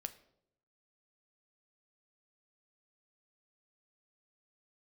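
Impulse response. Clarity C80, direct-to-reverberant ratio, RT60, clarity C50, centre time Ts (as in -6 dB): 18.5 dB, 9.0 dB, 0.75 s, 15.5 dB, 5 ms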